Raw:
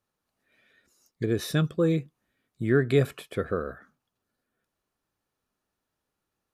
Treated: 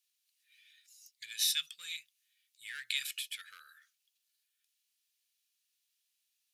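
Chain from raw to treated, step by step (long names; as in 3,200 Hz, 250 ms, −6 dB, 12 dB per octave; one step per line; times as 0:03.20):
in parallel at −8 dB: asymmetric clip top −22 dBFS
on the sum: inverse Chebyshev high-pass filter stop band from 780 Hz, stop band 60 dB
level +4.5 dB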